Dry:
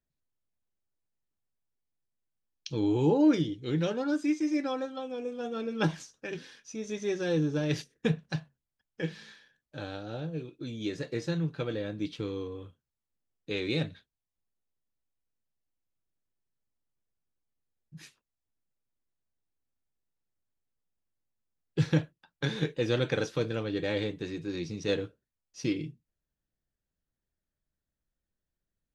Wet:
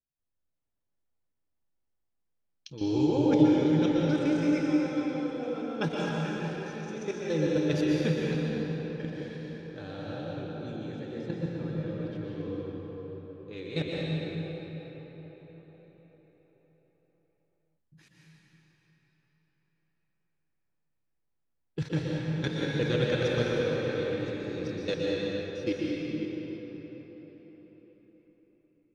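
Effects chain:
0:10.76–0:13.53: high-shelf EQ 3,200 Hz −10.5 dB
output level in coarse steps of 14 dB
convolution reverb RT60 5.3 s, pre-delay 113 ms, DRR −5.5 dB
one half of a high-frequency compander decoder only

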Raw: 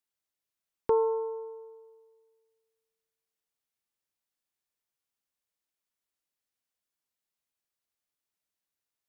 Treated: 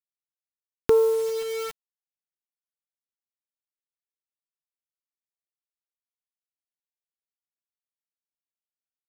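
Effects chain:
flat-topped bell 760 Hz −14.5 dB 1.2 octaves
bit-depth reduction 8 bits, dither none
upward compression, threshold −32 dBFS
level +9 dB

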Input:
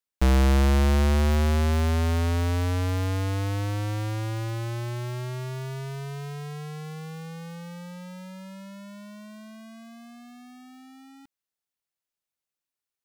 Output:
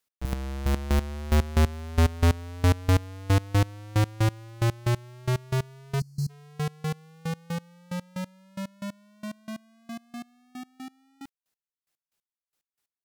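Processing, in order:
gate pattern "x..x...." 182 BPM −24 dB
gain on a spectral selection 0:06.00–0:06.30, 260–4,100 Hz −29 dB
sine wavefolder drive 6 dB, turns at −17 dBFS

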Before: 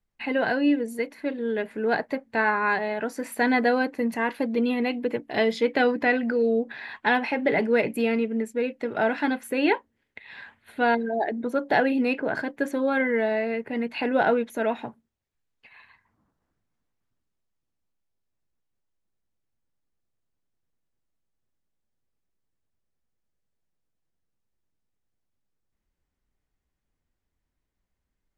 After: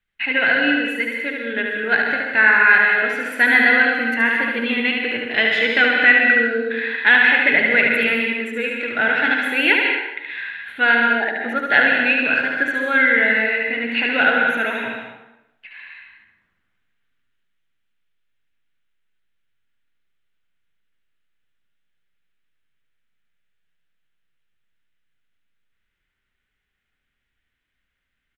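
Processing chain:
flat-topped bell 2,200 Hz +15.5 dB
on a send: single-tap delay 73 ms −4 dB
on the sum: dense smooth reverb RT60 0.88 s, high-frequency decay 0.85×, pre-delay 115 ms, DRR 2.5 dB
level −3.5 dB

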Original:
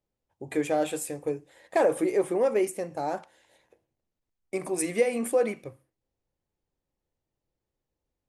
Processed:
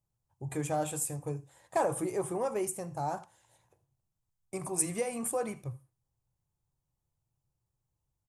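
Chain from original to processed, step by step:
octave-band graphic EQ 125/250/500/1,000/2,000/4,000/8,000 Hz +12/−9/−9/+4/−10/−6/+4 dB
single-tap delay 79 ms −21.5 dB

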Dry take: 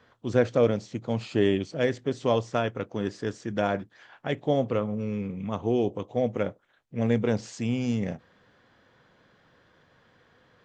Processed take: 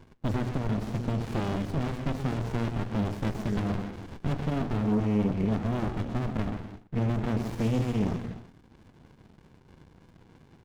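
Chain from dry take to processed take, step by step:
downward compressor 6 to 1, threshold −30 dBFS, peak gain reduction 13.5 dB
mains-hum notches 60/120/180/240/300 Hz
single-tap delay 128 ms −11.5 dB
reverb whose tail is shaped and stops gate 320 ms flat, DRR 9.5 dB
auto-filter notch saw up 3.2 Hz 230–2,600 Hz
leveller curve on the samples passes 2
windowed peak hold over 65 samples
level +4 dB

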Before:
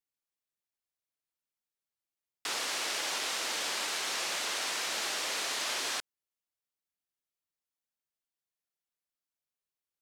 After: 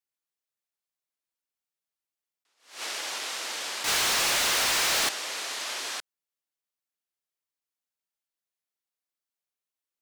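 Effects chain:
low-shelf EQ 200 Hz −8 dB
0:03.84–0:05.09: leveller curve on the samples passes 5
level that may rise only so fast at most 150 dB per second

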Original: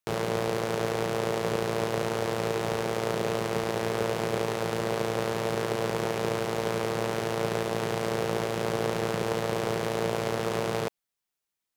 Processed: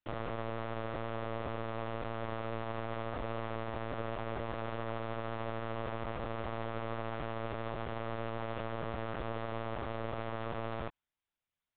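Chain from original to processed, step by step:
dynamic equaliser 1,100 Hz, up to +7 dB, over −45 dBFS, Q 1
brickwall limiter −23 dBFS, peak gain reduction 13.5 dB
linear-prediction vocoder at 8 kHz pitch kept
level −2.5 dB

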